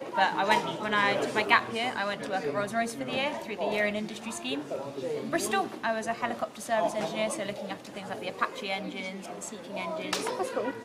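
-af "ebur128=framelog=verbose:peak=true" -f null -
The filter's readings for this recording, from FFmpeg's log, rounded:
Integrated loudness:
  I:         -30.2 LUFS
  Threshold: -40.2 LUFS
Loudness range:
  LRA:         6.3 LU
  Threshold: -50.8 LUFS
  LRA low:   -34.0 LUFS
  LRA high:  -27.6 LUFS
True peak:
  Peak:       -6.3 dBFS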